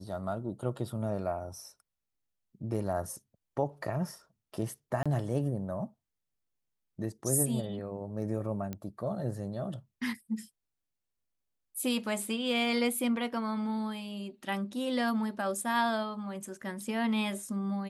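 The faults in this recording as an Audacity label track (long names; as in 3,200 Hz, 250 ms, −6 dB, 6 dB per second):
5.030000	5.060000	drop-out 26 ms
8.730000	8.730000	click −23 dBFS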